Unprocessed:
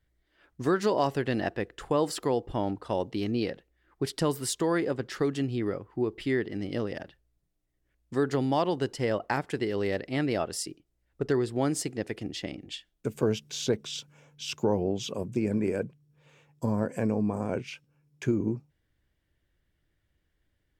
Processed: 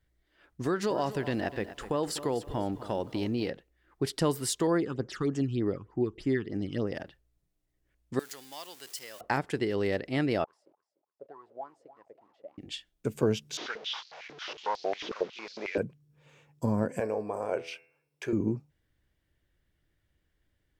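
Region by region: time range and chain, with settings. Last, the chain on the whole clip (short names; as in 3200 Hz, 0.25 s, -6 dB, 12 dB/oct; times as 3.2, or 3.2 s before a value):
0.65–3.48 compressor 2:1, threshold -27 dBFS + lo-fi delay 0.25 s, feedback 35%, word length 9-bit, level -13.5 dB
4.67–6.92 LPF 9600 Hz + phaser stages 8, 3.3 Hz, lowest notch 560–3900 Hz
8.19–9.21 zero-crossing step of -36 dBFS + differentiator
10.44–12.58 level-crossing sampler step -42.5 dBFS + wah 3.4 Hz 530–1100 Hz, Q 14 + feedback echo 0.295 s, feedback 27%, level -16.5 dB
13.57–15.78 delta modulation 32 kbps, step -41 dBFS + air absorption 58 m + stepped high-pass 11 Hz 320–4400 Hz
17–18.33 resonant low shelf 320 Hz -13 dB, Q 1.5 + notch 6800 Hz, Q 7.2 + de-hum 82.76 Hz, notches 33
whole clip: dry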